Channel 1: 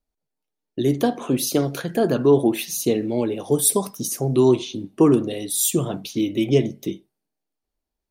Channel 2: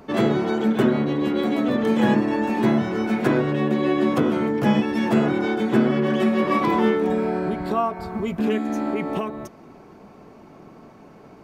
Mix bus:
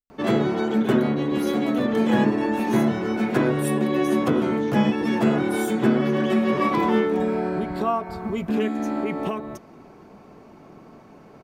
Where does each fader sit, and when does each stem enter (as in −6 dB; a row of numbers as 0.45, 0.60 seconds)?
−17.5, −1.0 decibels; 0.00, 0.10 seconds